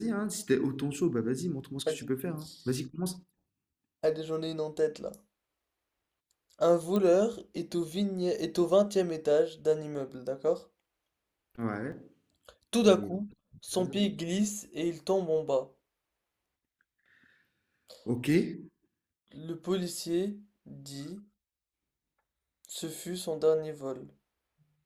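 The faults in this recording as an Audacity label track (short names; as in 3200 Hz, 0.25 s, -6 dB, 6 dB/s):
6.960000	6.960000	pop -19 dBFS
11.920000	11.920000	gap 2.8 ms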